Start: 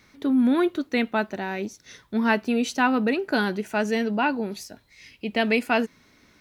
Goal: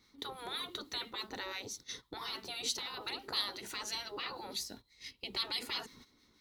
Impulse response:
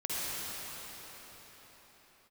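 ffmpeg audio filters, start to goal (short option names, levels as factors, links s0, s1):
-filter_complex "[0:a]agate=range=0.2:threshold=0.00447:ratio=16:detection=peak,afftfilt=real='re*lt(hypot(re,im),0.1)':imag='im*lt(hypot(re,im),0.1)':win_size=1024:overlap=0.75,equalizer=f=100:t=o:w=0.33:g=-4,equalizer=f=160:t=o:w=0.33:g=-7,equalizer=f=630:t=o:w=0.33:g=-10,equalizer=f=1600:t=o:w=0.33:g=-9,equalizer=f=2500:t=o:w=0.33:g=-8,equalizer=f=4000:t=o:w=0.33:g=7,asplit=2[s0][s1];[s1]acompressor=threshold=0.00282:ratio=16,volume=1.12[s2];[s0][s2]amix=inputs=2:normalize=0,acrossover=split=1300[s3][s4];[s3]aeval=exprs='val(0)*(1-0.5/2+0.5/2*cos(2*PI*6*n/s))':c=same[s5];[s4]aeval=exprs='val(0)*(1-0.5/2-0.5/2*cos(2*PI*6*n/s))':c=same[s6];[s5][s6]amix=inputs=2:normalize=0"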